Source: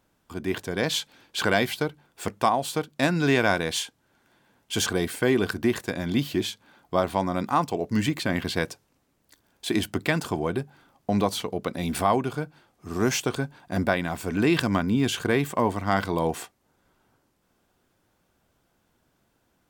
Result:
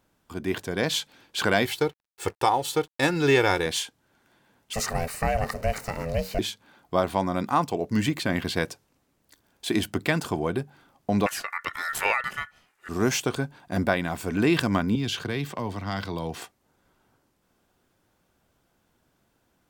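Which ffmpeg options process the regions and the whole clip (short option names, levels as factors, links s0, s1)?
-filter_complex "[0:a]asettb=1/sr,asplit=3[s0][s1][s2];[s0]atrim=end=1.654[s3];[s1]atrim=start=1.65:end=3.66,asetpts=PTS-STARTPTS,afade=t=in:d=0.004:c=qsin,afade=t=out:st=2.006:d=0.004:c=qsin,aecho=1:1:2.3:0.77,atrim=end_sample=88641,aeval=exprs='sgn(val(0))*max(abs(val(0))-0.00355,0)':c=same[s4];[s2]atrim=start=3.656[s5];[s3][s4]acrossfade=d=0.004:c1=hsin:c2=qsin[s6];[s6][s5]acrossfade=d=0.004:c1=qsin:c2=hsin,asettb=1/sr,asplit=3[s7][s8][s9];[s7]atrim=end=4.734[s10];[s8]atrim=start=4.73:end=6.39,asetpts=PTS-STARTPTS,afade=t=in:d=0.004:c=qsin,afade=t=out:st=1.656:d=0.004:c=qsin,aeval=exprs='val(0)+0.5*0.0133*sgn(val(0))':c=same,asuperstop=centerf=3300:order=8:qfactor=2.9,aeval=exprs='val(0)*sin(2*PI*330*n/s)':c=same[s11];[s9]atrim=start=6.386[s12];[s10][s11]acrossfade=d=0.004:c1=hsin:c2=qsin[s13];[s13][s12]acrossfade=d=0.004:c1=qsin:c2=hsin,asettb=1/sr,asplit=3[s14][s15][s16];[s14]atrim=end=11.264[s17];[s15]atrim=start=11.26:end=12.89,asetpts=PTS-STARTPTS,afade=t=in:d=0.004:c=qsin,afade=t=out:st=1.626:d=0.004:c=qsin,equalizer=f=10000:t=o:w=0.48:g=6.5,aeval=exprs='val(0)*sin(2*PI*1600*n/s)':c=same[s18];[s16]atrim=start=12.886[s19];[s17][s18]acrossfade=d=0.004:c1=hsin:c2=qsin[s20];[s20][s19]acrossfade=d=0.004:c1=qsin:c2=hsin,asettb=1/sr,asplit=3[s21][s22][s23];[s21]atrim=end=14.954[s24];[s22]atrim=start=14.95:end=16.42,asetpts=PTS-STARTPTS,afade=t=in:d=0.004:c=qsin,afade=t=out:st=1.466:d=0.004:c=qsin,highshelf=f=6300:t=q:w=1.5:g=-6.5,acrossover=split=160|3000[s25][s26][s27];[s26]acompressor=threshold=0.0178:ratio=2:attack=3.2:release=140:knee=2.83:detection=peak[s28];[s25][s28][s27]amix=inputs=3:normalize=0,highpass=62[s29];[s23]atrim=start=16.416[s30];[s24][s29]acrossfade=d=0.004:c1=hsin:c2=qsin[s31];[s31][s30]acrossfade=d=0.004:c1=qsin:c2=hsin"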